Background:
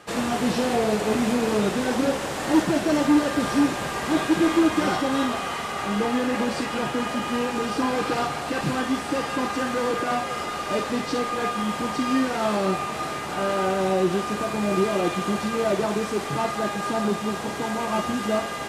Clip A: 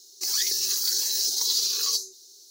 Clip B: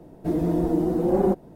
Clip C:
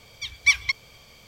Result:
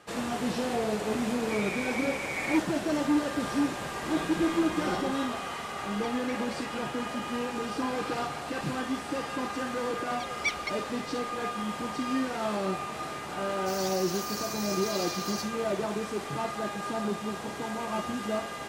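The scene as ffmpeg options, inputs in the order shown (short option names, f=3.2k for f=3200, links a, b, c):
-filter_complex "[2:a]asplit=2[a][b];[3:a]asplit=2[c][d];[0:a]volume=-7dB[e];[a]lowpass=f=2.2k:t=q:w=0.5098,lowpass=f=2.2k:t=q:w=0.6013,lowpass=f=2.2k:t=q:w=0.9,lowpass=f=2.2k:t=q:w=2.563,afreqshift=-2600[f];[c]acompressor=threshold=-37dB:ratio=5:attack=14:release=589:knee=1:detection=rms[g];[f]atrim=end=1.55,asetpts=PTS-STARTPTS,volume=-15dB,afade=t=in:d=0.004:c=hsin,afade=t=out:st=1.546:d=0.004:c=hsin,adelay=1240[h];[b]atrim=end=1.55,asetpts=PTS-STARTPTS,volume=-16.5dB,afade=t=in:d=0.004:c=hsin,afade=t=out:st=1.546:d=0.004:c=hsin,adelay=3790[i];[g]atrim=end=1.27,asetpts=PTS-STARTPTS,volume=-9dB,afade=t=in:d=0.004:c=hsin,afade=t=out:st=1.266:d=0.004:c=hsin,adelay=5820[j];[d]atrim=end=1.27,asetpts=PTS-STARTPTS,volume=-11.5dB,afade=t=in:d=0.004:c=hsin,afade=t=out:st=1.266:d=0.004:c=hsin,adelay=9980[k];[1:a]atrim=end=2.5,asetpts=PTS-STARTPTS,volume=-13.5dB,afade=t=in:d=0.004:c=hsin,afade=t=out:st=2.496:d=0.004:c=hsin,adelay=13450[l];[e][h][i][j][k][l]amix=inputs=6:normalize=0"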